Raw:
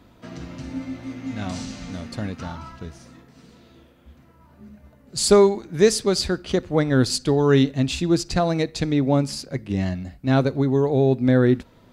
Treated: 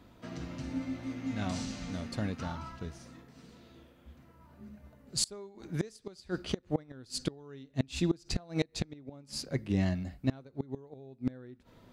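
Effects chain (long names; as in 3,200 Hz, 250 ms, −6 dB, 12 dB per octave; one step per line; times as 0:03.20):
gate with flip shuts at −12 dBFS, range −27 dB
level −5 dB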